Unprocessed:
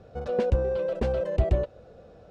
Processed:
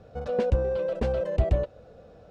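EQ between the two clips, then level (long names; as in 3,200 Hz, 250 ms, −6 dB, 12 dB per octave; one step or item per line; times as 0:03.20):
notch filter 370 Hz, Q 12
0.0 dB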